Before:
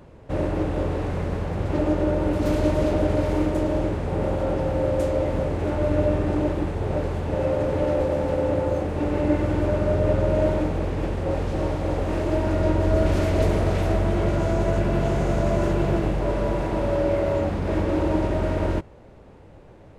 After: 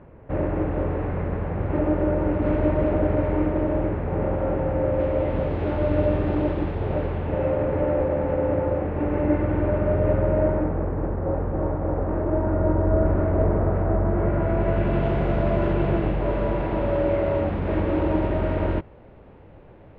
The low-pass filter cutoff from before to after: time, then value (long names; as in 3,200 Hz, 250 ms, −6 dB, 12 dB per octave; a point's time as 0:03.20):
low-pass filter 24 dB per octave
0:04.86 2,300 Hz
0:05.52 3,700 Hz
0:06.73 3,700 Hz
0:07.81 2,300 Hz
0:10.09 2,300 Hz
0:10.99 1,500 Hz
0:14.04 1,500 Hz
0:14.91 3,200 Hz